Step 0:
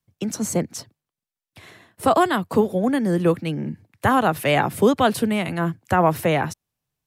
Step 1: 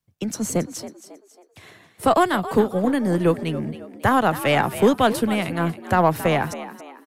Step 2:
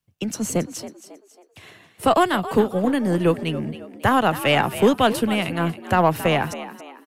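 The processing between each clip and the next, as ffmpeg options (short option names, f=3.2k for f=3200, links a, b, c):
-filter_complex "[0:a]asplit=5[a][b][c][d][e];[b]adelay=273,afreqshift=62,volume=-13.5dB[f];[c]adelay=546,afreqshift=124,volume=-21.7dB[g];[d]adelay=819,afreqshift=186,volume=-29.9dB[h];[e]adelay=1092,afreqshift=248,volume=-38dB[i];[a][f][g][h][i]amix=inputs=5:normalize=0,aeval=exprs='0.562*(cos(1*acos(clip(val(0)/0.562,-1,1)))-cos(1*PI/2))+0.0141*(cos(6*acos(clip(val(0)/0.562,-1,1)))-cos(6*PI/2))+0.00708*(cos(7*acos(clip(val(0)/0.562,-1,1)))-cos(7*PI/2))':c=same"
-af "equalizer=f=2.8k:w=4.9:g=6.5"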